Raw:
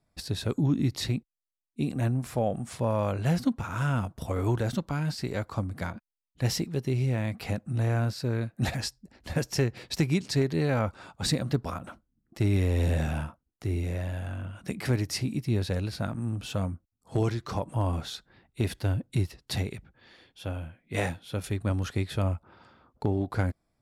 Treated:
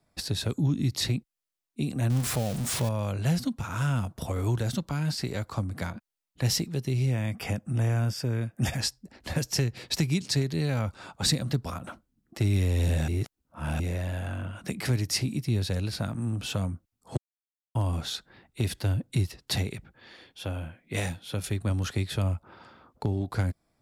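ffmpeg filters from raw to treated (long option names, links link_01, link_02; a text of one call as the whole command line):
ffmpeg -i in.wav -filter_complex "[0:a]asettb=1/sr,asplit=3[link_01][link_02][link_03];[link_01]atrim=end=2.104[link_04];[link_02]atrim=start=2.1:end=2.89,asetpts=PTS-STARTPTS,afade=type=in:duration=0.004:curve=qsin,afade=type=out:start_time=0.786:duration=0.004:curve=qsin,aeval=exprs='val(0)+0.5*0.0282*sgn(val(0))':channel_layout=same[link_05];[link_03]atrim=start=2.886[link_06];[link_04][link_05]acrossfade=duration=0.004:curve1=hsin:curve2=qsin[link_07];[link_07][link_06]acrossfade=duration=0.004:curve1=qsin:curve2=hsin,asettb=1/sr,asplit=3[link_08][link_09][link_10];[link_08]atrim=end=7.114[link_11];[link_09]atrim=start=7.11:end=8.76,asetpts=PTS-STARTPTS,afade=type=in:duration=0.004:curve=qsin,afade=type=out:start_time=1.646:duration=0.004:curve=qsin,asuperstop=centerf=4100:order=8:qfactor=5[link_12];[link_10]atrim=start=8.756[link_13];[link_11][link_12]acrossfade=duration=0.004:curve1=hsin:curve2=qsin[link_14];[link_14][link_13]acrossfade=duration=0.004:curve1=qsin:curve2=hsin,asplit=5[link_15][link_16][link_17][link_18][link_19];[link_15]atrim=end=13.082[link_20];[link_16]atrim=start=13.078:end=13.802,asetpts=PTS-STARTPTS,areverse[link_21];[link_17]atrim=start=13.798:end=17.17,asetpts=PTS-STARTPTS,afade=type=out:start_time=3.368:duration=0.004:curve=hsin[link_22];[link_18]atrim=start=17.17:end=17.75,asetpts=PTS-STARTPTS,volume=0[link_23];[link_19]atrim=start=17.75,asetpts=PTS-STARTPTS,afade=type=in:duration=0.004:curve=hsin[link_24];[link_20][link_21]acrossfade=duration=0.004:curve1=hsin:curve2=hsin[link_25];[link_22][link_23][link_24]concat=n=3:v=0:a=1[link_26];[link_25][link_26]acrossfade=duration=0.004:curve1=hsin:curve2=hsin,lowshelf=frequency=120:gain=-6,acrossover=split=180|3000[link_27][link_28][link_29];[link_28]acompressor=threshold=-40dB:ratio=3[link_30];[link_27][link_30][link_29]amix=inputs=3:normalize=0,volume=5dB" out.wav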